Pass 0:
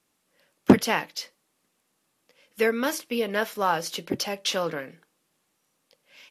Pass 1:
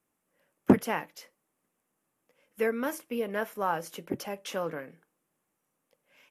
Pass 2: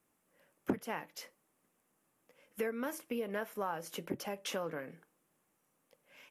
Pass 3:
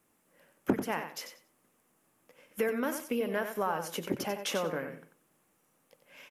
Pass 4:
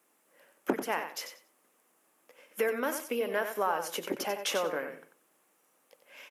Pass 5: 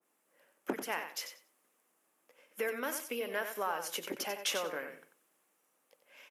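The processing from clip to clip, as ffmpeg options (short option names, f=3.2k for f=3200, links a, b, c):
-af "equalizer=f=4.3k:w=1.1:g=-14,volume=-4.5dB"
-af "acompressor=threshold=-39dB:ratio=3,volume=2.5dB"
-af "aecho=1:1:92|184|276:0.376|0.0752|0.015,volume=5.5dB"
-af "highpass=350,volume=2.5dB"
-af "adynamicequalizer=threshold=0.00501:dfrequency=1500:dqfactor=0.7:tfrequency=1500:tqfactor=0.7:attack=5:release=100:ratio=0.375:range=3:mode=boostabove:tftype=highshelf,volume=-6.5dB"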